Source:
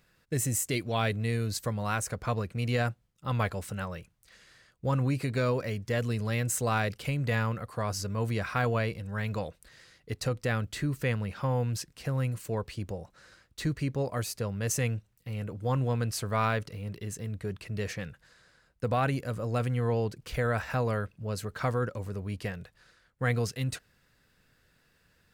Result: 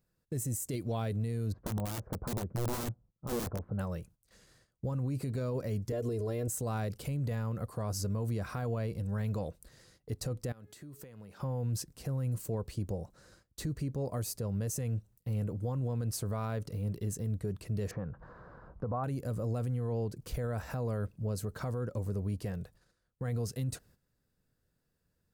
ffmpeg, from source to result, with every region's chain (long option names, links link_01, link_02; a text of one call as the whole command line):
ffmpeg -i in.wav -filter_complex "[0:a]asettb=1/sr,asplit=3[link_01][link_02][link_03];[link_01]atrim=end=1.524[link_04];[link_02]atrim=start=1.52:end=3.79,asetpts=PTS-STARTPTS,afade=type=in:duration=0.004:curve=qsin,afade=type=out:start_time=2.266:duration=0.004:curve=qsin,lowpass=frequency=1300:width=0.5412,lowpass=frequency=1300:width=1.3066,aeval=exprs='(mod(21.1*val(0)+1,2)-1)/21.1':channel_layout=same[link_05];[link_03]atrim=start=3.786[link_06];[link_04][link_05]acrossfade=duration=0.004:curve1=hsin:curve2=qsin[link_07];[link_07][link_06]acrossfade=duration=0.004:curve1=qsin:curve2=hsin,asettb=1/sr,asplit=3[link_08][link_09][link_10];[link_08]atrim=end=5.924[link_11];[link_09]atrim=start=5.92:end=6.48,asetpts=PTS-STARTPTS,afade=type=in:duration=0.004:curve=qsin,afade=type=out:start_time=0.556:duration=0.004:curve=qsin,highpass=frequency=61:width=0.5412,highpass=frequency=61:width=1.3066,equalizer=frequency=480:width_type=o:width=0.8:gain=14.5,aecho=1:1:2.9:0.83,atrim=end_sample=24696[link_12];[link_10]atrim=start=6.476[link_13];[link_11][link_12]acrossfade=duration=0.004:curve1=hsin:curve2=qsin[link_14];[link_14][link_13]acrossfade=duration=0.004:curve1=qsin:curve2=hsin,asettb=1/sr,asplit=3[link_15][link_16][link_17];[link_15]atrim=end=10.524[link_18];[link_16]atrim=start=10.52:end=11.4,asetpts=PTS-STARTPTS,afade=type=in:duration=0.004:curve=qsin,afade=type=out:start_time=0.876:duration=0.004:curve=qsin,highpass=frequency=330:poles=1,bandreject=frequency=420.3:width_type=h:width=4,bandreject=frequency=840.6:width_type=h:width=4,bandreject=frequency=1260.9:width_type=h:width=4,bandreject=frequency=1681.2:width_type=h:width=4,bandreject=frequency=2101.5:width_type=h:width=4,bandreject=frequency=2521.8:width_type=h:width=4,bandreject=frequency=2942.1:width_type=h:width=4,bandreject=frequency=3362.4:width_type=h:width=4,bandreject=frequency=3782.7:width_type=h:width=4,bandreject=frequency=4203:width_type=h:width=4,acompressor=threshold=-46dB:ratio=16:attack=3.2:release=140:knee=1:detection=peak[link_19];[link_17]atrim=start=11.396[link_20];[link_18][link_19]acrossfade=duration=0.004:curve1=hsin:curve2=qsin[link_21];[link_21][link_20]acrossfade=duration=0.004:curve1=qsin:curve2=hsin,asettb=1/sr,asplit=3[link_22][link_23][link_24];[link_22]atrim=end=17.914[link_25];[link_23]atrim=start=17.91:end=19.04,asetpts=PTS-STARTPTS,afade=type=in:duration=0.004:curve=qsin,afade=type=out:start_time=1.126:duration=0.004:curve=qsin,lowpass=frequency=1100:width_type=q:width=2.7,acompressor=mode=upward:threshold=-37dB:ratio=2.5:attack=3.2:release=140:knee=2.83:detection=peak[link_26];[link_24]atrim=start=19.036[link_27];[link_25][link_26]acrossfade=duration=0.004:curve1=hsin:curve2=qsin[link_28];[link_28][link_27]acrossfade=duration=0.004:curve1=qsin:curve2=hsin,agate=range=-12dB:threshold=-58dB:ratio=16:detection=peak,equalizer=frequency=2300:width=0.52:gain=-14,alimiter=level_in=6.5dB:limit=-24dB:level=0:latency=1:release=97,volume=-6.5dB,volume=3.5dB" out.wav